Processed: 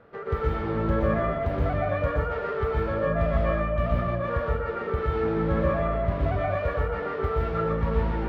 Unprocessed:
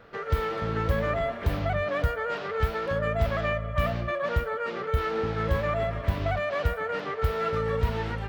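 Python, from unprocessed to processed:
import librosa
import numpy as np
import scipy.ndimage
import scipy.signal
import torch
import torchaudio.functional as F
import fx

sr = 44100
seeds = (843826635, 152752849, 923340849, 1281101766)

y = fx.lowpass(x, sr, hz=1000.0, slope=6)
y = fx.low_shelf(y, sr, hz=65.0, db=-8.0)
y = fx.rev_plate(y, sr, seeds[0], rt60_s=0.65, hf_ratio=0.6, predelay_ms=110, drr_db=-2.5)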